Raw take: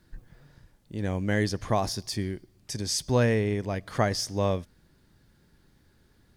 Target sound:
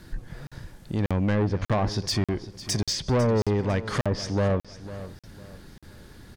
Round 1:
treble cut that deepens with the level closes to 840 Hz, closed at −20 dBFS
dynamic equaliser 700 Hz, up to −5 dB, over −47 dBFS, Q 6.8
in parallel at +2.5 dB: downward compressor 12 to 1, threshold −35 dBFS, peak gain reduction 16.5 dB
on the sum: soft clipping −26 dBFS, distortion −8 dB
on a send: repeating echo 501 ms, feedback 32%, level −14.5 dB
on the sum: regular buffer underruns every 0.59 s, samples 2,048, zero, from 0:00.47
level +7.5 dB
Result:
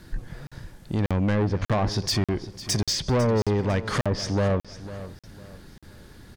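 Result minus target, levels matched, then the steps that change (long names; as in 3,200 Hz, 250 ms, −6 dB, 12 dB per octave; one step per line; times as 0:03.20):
downward compressor: peak gain reduction −9.5 dB
change: downward compressor 12 to 1, threshold −45.5 dBFS, peak gain reduction 26 dB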